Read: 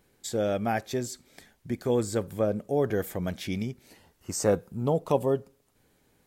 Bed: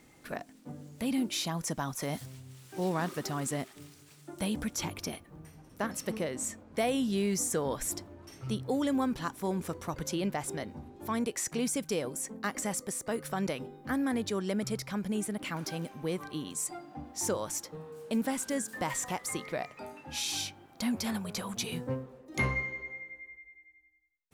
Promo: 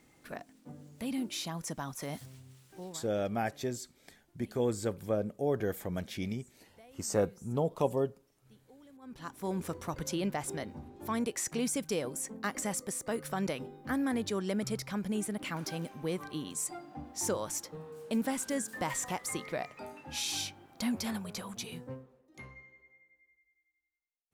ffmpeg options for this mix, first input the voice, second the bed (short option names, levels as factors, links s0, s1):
-filter_complex "[0:a]adelay=2700,volume=0.562[s0];[1:a]volume=12.6,afade=t=out:st=2.43:d=0.62:silence=0.0707946,afade=t=in:st=9.01:d=0.59:silence=0.0473151,afade=t=out:st=20.85:d=1.58:silence=0.105925[s1];[s0][s1]amix=inputs=2:normalize=0"